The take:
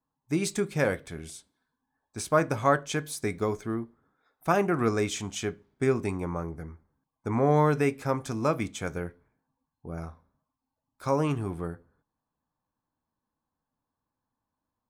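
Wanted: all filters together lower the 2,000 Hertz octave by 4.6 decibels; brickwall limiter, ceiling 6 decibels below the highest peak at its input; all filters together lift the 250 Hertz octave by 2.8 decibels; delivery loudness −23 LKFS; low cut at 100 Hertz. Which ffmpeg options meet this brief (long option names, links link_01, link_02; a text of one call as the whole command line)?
ffmpeg -i in.wav -af "highpass=100,equalizer=frequency=250:width_type=o:gain=4,equalizer=frequency=2000:width_type=o:gain=-6.5,volume=6dB,alimiter=limit=-8.5dB:level=0:latency=1" out.wav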